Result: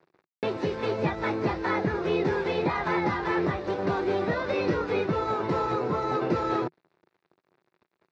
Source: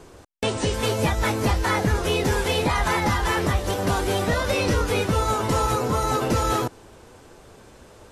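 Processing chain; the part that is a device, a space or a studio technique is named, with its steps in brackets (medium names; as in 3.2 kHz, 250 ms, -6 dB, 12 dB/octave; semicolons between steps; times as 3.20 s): blown loudspeaker (crossover distortion -41.5 dBFS; cabinet simulation 150–3900 Hz, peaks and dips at 160 Hz +6 dB, 240 Hz -3 dB, 360 Hz +8 dB, 3.1 kHz -10 dB); trim -4 dB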